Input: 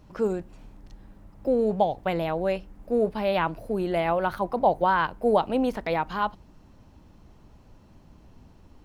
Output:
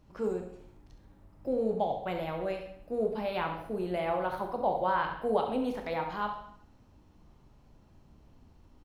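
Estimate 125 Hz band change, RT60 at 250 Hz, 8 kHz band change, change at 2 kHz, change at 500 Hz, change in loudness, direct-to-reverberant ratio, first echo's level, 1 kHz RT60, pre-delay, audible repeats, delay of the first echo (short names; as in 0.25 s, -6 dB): -7.5 dB, 0.65 s, n/a, -7.0 dB, -6.5 dB, -6.5 dB, 3.0 dB, -10.5 dB, 0.65 s, 6 ms, 1, 67 ms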